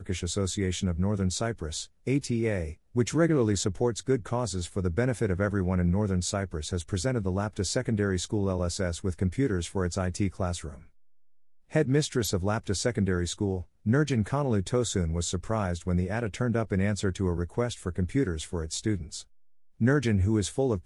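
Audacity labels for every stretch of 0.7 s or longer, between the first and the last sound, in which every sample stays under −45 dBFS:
10.870000	11.710000	silence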